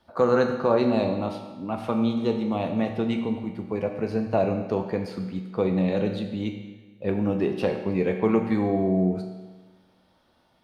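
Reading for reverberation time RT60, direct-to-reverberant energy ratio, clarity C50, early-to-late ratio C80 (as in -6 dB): 1.3 s, 3.0 dB, 6.5 dB, 7.5 dB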